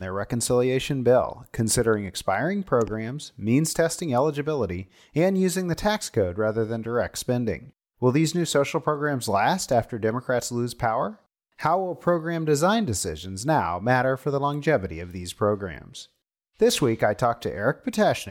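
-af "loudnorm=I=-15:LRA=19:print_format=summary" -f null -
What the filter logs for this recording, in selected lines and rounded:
Input Integrated:    -24.4 LUFS
Input True Peak:      -9.7 dBTP
Input LRA:             1.7 LU
Input Threshold:     -34.8 LUFS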